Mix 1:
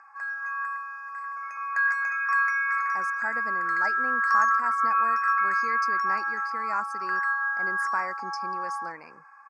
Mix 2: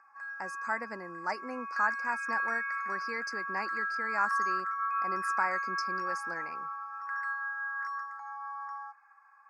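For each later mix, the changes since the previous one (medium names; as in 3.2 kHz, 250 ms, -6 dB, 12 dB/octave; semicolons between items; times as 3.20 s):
speech: entry -2.55 s; background -8.5 dB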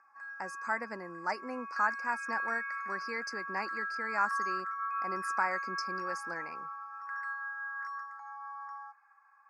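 background -3.5 dB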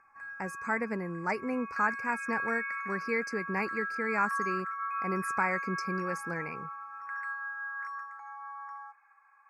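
master: remove cabinet simulation 400–9500 Hz, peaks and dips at 440 Hz -9 dB, 2.3 kHz -10 dB, 3.5 kHz -4 dB, 4.9 kHz +7 dB, 8 kHz -3 dB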